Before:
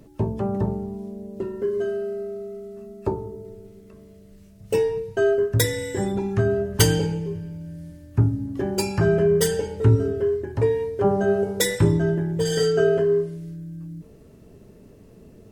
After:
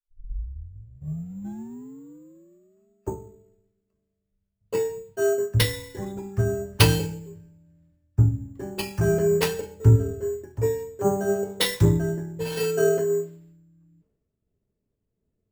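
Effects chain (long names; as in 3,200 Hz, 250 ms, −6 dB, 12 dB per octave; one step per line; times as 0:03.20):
turntable start at the beginning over 2.88 s
bad sample-rate conversion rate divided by 6×, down none, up hold
multiband upward and downward expander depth 100%
level −5.5 dB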